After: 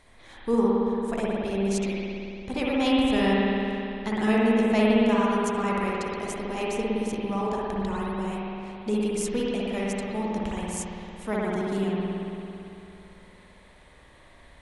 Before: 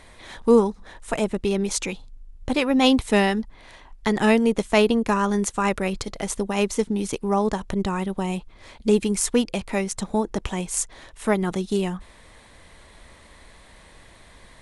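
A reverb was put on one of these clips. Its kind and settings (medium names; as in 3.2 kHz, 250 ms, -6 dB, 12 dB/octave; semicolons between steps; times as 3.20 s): spring tank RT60 2.9 s, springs 56 ms, chirp 75 ms, DRR -5.5 dB; trim -10 dB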